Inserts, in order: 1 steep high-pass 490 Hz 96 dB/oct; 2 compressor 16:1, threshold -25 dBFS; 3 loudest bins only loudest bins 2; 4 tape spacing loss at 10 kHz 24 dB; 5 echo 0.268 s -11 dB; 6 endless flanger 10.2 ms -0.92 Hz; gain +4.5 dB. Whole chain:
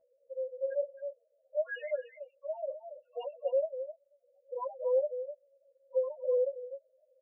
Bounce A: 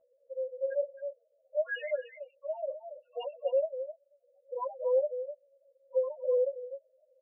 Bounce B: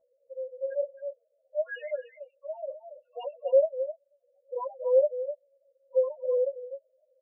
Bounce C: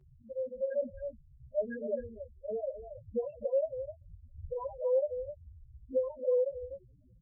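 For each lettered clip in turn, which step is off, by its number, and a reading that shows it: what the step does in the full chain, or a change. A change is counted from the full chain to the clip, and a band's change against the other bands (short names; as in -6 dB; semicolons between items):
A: 4, loudness change +1.5 LU; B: 2, mean gain reduction 2.0 dB; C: 1, momentary loudness spread change +2 LU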